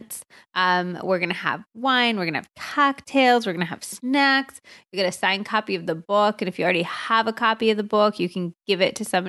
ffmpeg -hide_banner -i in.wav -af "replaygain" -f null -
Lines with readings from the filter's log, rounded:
track_gain = +1.0 dB
track_peak = 0.373